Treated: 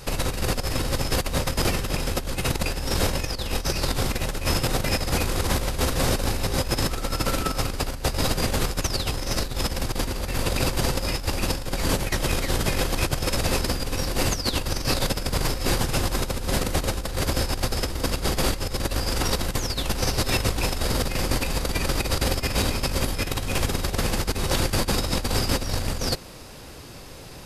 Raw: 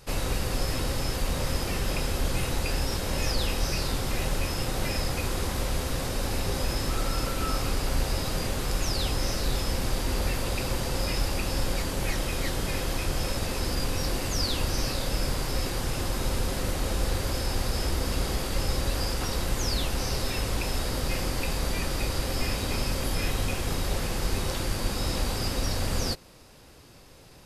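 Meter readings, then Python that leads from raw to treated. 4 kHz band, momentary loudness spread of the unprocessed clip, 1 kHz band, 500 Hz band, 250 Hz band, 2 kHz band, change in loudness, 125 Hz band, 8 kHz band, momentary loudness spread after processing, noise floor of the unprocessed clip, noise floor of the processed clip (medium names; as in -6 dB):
+4.0 dB, 2 LU, +4.5 dB, +4.5 dB, +4.5 dB, +4.5 dB, +4.0 dB, +3.5 dB, +4.5 dB, 3 LU, -37 dBFS, -35 dBFS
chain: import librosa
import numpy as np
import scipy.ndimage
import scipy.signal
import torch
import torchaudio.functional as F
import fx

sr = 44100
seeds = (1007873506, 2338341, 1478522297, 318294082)

y = fx.over_compress(x, sr, threshold_db=-30.0, ratio=-0.5)
y = F.gain(torch.from_numpy(y), 6.5).numpy()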